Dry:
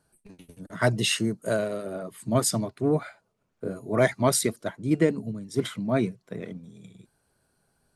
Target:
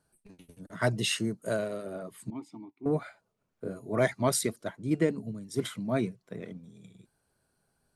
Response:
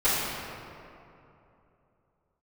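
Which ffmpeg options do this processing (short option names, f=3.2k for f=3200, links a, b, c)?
-filter_complex "[0:a]asettb=1/sr,asplit=3[a][b][c];[a]atrim=end=2.304[d];[b]atrim=start=2.3:end=2.86,asetpts=PTS-STARTPTS,afade=t=in:d=0.004:c=qsin,afade=t=out:st=0.556:d=0.004:c=qsin,asplit=3[e][f][g];[e]bandpass=f=300:t=q:w=8,volume=0dB[h];[f]bandpass=f=870:t=q:w=8,volume=-6dB[i];[g]bandpass=f=2.24k:t=q:w=8,volume=-9dB[j];[h][i][j]amix=inputs=3:normalize=0[k];[c]atrim=start=2.856[l];[d][k]acrossfade=d=0.004:c1=hsin:c2=qsin[m];[m][l]acrossfade=d=0.004:c1=qsin:c2=hsin,asettb=1/sr,asplit=3[n][o][p];[n]atrim=end=5.324[q];[o]atrim=start=5.32:end=6.01,asetpts=PTS-STARTPTS,afade=t=in:d=0.004:c=qsin,afade=t=out:st=0.686:d=0.004:c=qsin,highshelf=f=7k:g=6.5[r];[p]atrim=start=6.006[s];[q][r]acrossfade=d=0.004:c1=hsin:c2=qsin[t];[t][s]acrossfade=d=0.004:c1=qsin:c2=hsin,volume=-4.5dB"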